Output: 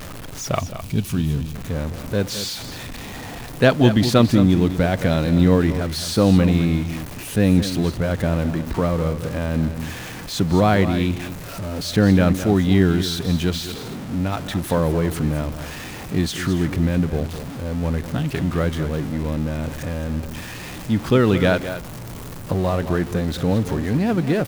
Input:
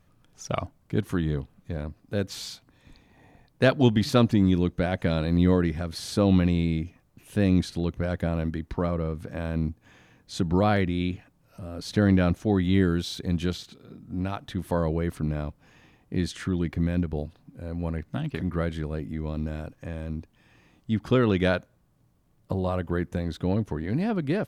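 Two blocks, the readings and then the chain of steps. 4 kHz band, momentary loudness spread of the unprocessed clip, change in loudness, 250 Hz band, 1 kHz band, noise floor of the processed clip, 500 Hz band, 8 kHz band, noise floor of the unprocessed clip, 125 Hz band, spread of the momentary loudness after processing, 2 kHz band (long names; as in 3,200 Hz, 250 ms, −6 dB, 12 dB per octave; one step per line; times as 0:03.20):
+8.5 dB, 15 LU, +6.0 dB, +6.0 dB, +6.5 dB, −34 dBFS, +6.5 dB, +11.5 dB, −64 dBFS, +6.5 dB, 15 LU, +7.0 dB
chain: converter with a step at zero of −33.5 dBFS
gain on a spectral selection 0:00.60–0:01.55, 260–2,200 Hz −9 dB
on a send: multi-tap delay 190/215 ms −19.5/−11.5 dB
on the sum: level +5 dB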